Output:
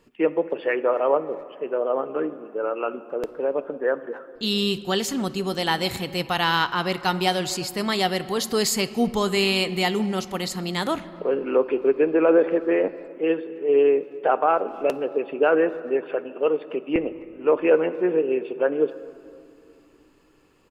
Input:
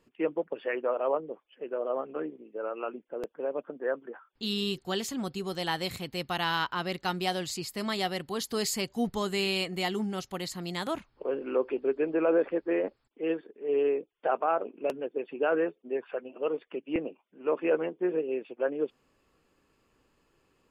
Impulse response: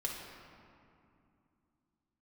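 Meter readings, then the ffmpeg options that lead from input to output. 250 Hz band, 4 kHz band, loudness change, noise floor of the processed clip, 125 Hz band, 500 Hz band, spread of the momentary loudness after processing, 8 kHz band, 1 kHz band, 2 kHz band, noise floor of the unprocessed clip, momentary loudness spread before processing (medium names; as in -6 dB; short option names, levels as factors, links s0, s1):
+7.5 dB, +7.5 dB, +8.0 dB, -54 dBFS, +7.5 dB, +8.5 dB, 9 LU, +8.0 dB, +8.0 dB, +8.0 dB, -72 dBFS, 9 LU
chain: -filter_complex "[0:a]acontrast=61,asplit=2[s0][s1];[s1]adelay=260,highpass=300,lowpass=3400,asoftclip=type=hard:threshold=0.141,volume=0.0562[s2];[s0][s2]amix=inputs=2:normalize=0,asplit=2[s3][s4];[1:a]atrim=start_sample=2205[s5];[s4][s5]afir=irnorm=-1:irlink=0,volume=0.251[s6];[s3][s6]amix=inputs=2:normalize=0"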